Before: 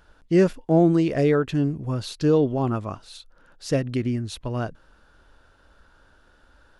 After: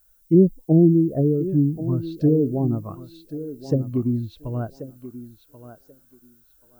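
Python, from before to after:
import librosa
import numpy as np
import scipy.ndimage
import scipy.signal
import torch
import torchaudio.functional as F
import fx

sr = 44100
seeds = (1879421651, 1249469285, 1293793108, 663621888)

y = fx.env_lowpass_down(x, sr, base_hz=330.0, full_db=-17.0)
y = fx.dmg_noise_colour(y, sr, seeds[0], colour='violet', level_db=-44.0)
y = fx.echo_thinned(y, sr, ms=1084, feedback_pct=34, hz=190.0, wet_db=-7.5)
y = fx.spectral_expand(y, sr, expansion=1.5)
y = y * 10.0 ** (5.5 / 20.0)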